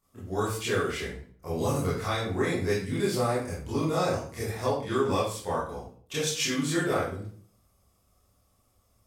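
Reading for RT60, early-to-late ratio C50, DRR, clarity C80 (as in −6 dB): 0.50 s, 2.0 dB, −10.0 dB, 6.5 dB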